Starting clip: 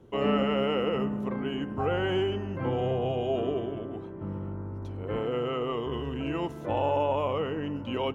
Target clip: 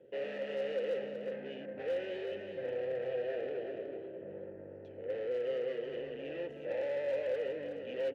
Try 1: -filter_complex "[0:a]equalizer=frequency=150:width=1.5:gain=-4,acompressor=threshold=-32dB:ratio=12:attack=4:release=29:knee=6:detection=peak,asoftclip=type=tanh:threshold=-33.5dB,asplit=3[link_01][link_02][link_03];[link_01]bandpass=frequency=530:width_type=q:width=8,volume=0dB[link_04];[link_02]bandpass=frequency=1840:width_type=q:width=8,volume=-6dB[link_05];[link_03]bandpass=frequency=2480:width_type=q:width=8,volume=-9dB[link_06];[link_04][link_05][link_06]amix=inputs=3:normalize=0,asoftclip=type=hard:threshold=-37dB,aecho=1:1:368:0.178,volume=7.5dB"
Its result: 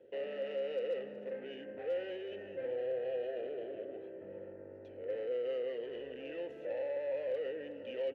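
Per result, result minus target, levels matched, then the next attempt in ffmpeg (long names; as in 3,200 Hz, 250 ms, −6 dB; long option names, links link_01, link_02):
downward compressor: peak gain reduction +10.5 dB; echo-to-direct −7.5 dB; 125 Hz band −5.0 dB
-filter_complex "[0:a]equalizer=frequency=150:width=1.5:gain=-4,asoftclip=type=tanh:threshold=-33.5dB,asplit=3[link_01][link_02][link_03];[link_01]bandpass=frequency=530:width_type=q:width=8,volume=0dB[link_04];[link_02]bandpass=frequency=1840:width_type=q:width=8,volume=-6dB[link_05];[link_03]bandpass=frequency=2480:width_type=q:width=8,volume=-9dB[link_06];[link_04][link_05][link_06]amix=inputs=3:normalize=0,asoftclip=type=hard:threshold=-37dB,aecho=1:1:368:0.178,volume=7.5dB"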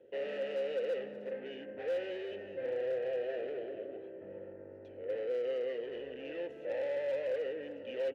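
125 Hz band −5.5 dB; echo-to-direct −7.5 dB
-filter_complex "[0:a]equalizer=frequency=150:width=1.5:gain=5,asoftclip=type=tanh:threshold=-33.5dB,asplit=3[link_01][link_02][link_03];[link_01]bandpass=frequency=530:width_type=q:width=8,volume=0dB[link_04];[link_02]bandpass=frequency=1840:width_type=q:width=8,volume=-6dB[link_05];[link_03]bandpass=frequency=2480:width_type=q:width=8,volume=-9dB[link_06];[link_04][link_05][link_06]amix=inputs=3:normalize=0,asoftclip=type=hard:threshold=-37dB,aecho=1:1:368:0.178,volume=7.5dB"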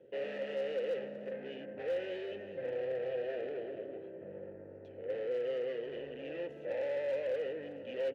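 echo-to-direct −7.5 dB
-filter_complex "[0:a]equalizer=frequency=150:width=1.5:gain=5,asoftclip=type=tanh:threshold=-33.5dB,asplit=3[link_01][link_02][link_03];[link_01]bandpass=frequency=530:width_type=q:width=8,volume=0dB[link_04];[link_02]bandpass=frequency=1840:width_type=q:width=8,volume=-6dB[link_05];[link_03]bandpass=frequency=2480:width_type=q:width=8,volume=-9dB[link_06];[link_04][link_05][link_06]amix=inputs=3:normalize=0,asoftclip=type=hard:threshold=-37dB,aecho=1:1:368:0.422,volume=7.5dB"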